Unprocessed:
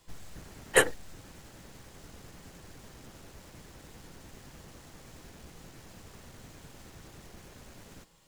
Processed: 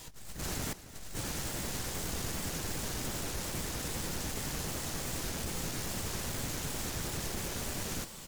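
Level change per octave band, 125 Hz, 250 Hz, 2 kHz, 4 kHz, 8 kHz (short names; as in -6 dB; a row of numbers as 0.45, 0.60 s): +10.0, +7.0, -6.0, +4.5, +5.0 dB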